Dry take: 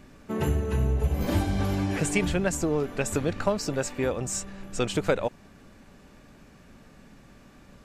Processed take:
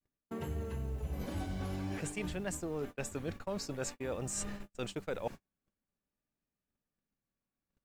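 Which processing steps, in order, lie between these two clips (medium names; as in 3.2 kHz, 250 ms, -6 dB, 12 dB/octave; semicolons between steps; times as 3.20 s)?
reverse; compression 8:1, threshold -38 dBFS, peak gain reduction 19.5 dB; reverse; word length cut 12-bit, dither triangular; vibrato 0.5 Hz 62 cents; gate -44 dBFS, range -43 dB; trim +2.5 dB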